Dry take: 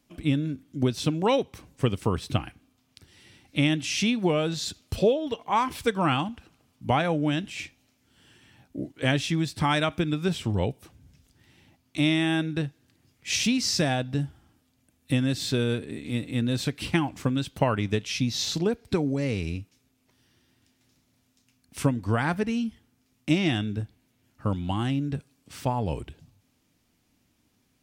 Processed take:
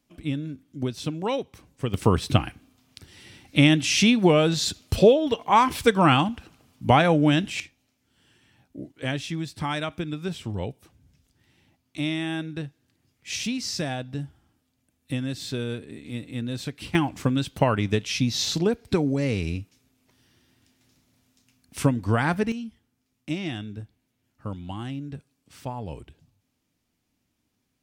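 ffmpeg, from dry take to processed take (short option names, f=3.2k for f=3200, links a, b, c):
-af "asetnsamples=n=441:p=0,asendcmd='1.94 volume volume 6dB;7.6 volume volume -4.5dB;16.95 volume volume 2.5dB;22.52 volume volume -6.5dB',volume=-4dB"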